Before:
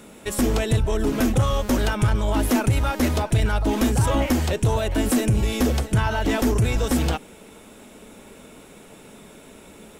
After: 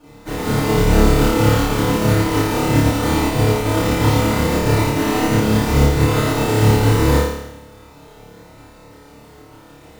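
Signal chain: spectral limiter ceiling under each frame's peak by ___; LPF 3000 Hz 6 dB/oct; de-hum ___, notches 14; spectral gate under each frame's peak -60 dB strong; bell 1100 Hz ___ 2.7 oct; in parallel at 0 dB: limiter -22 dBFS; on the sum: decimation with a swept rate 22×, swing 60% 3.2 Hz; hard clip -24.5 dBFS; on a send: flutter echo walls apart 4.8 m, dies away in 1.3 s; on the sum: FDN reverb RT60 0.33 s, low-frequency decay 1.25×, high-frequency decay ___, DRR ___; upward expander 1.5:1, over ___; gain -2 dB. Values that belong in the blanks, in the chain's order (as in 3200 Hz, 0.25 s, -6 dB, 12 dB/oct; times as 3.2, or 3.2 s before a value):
14 dB, 82.53 Hz, -7 dB, 0.85×, -8 dB, -28 dBFS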